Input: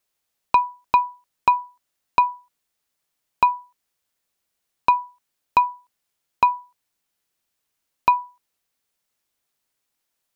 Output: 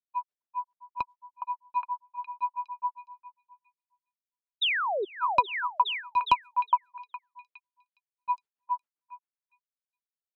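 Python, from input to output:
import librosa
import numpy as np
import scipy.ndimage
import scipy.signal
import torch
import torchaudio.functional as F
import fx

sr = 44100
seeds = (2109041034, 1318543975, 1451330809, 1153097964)

y = fx.granulator(x, sr, seeds[0], grain_ms=100.0, per_s=7.5, spray_ms=540.0, spread_st=0)
y = fx.spec_paint(y, sr, seeds[1], shape='fall', start_s=4.61, length_s=0.44, low_hz=360.0, high_hz=4000.0, level_db=-20.0)
y = fx.echo_stepped(y, sr, ms=413, hz=1000.0, octaves=0.7, feedback_pct=70, wet_db=-0.5)
y = fx.env_lowpass(y, sr, base_hz=2000.0, full_db=-18.0)
y = fx.band_widen(y, sr, depth_pct=70)
y = y * librosa.db_to_amplitude(-8.5)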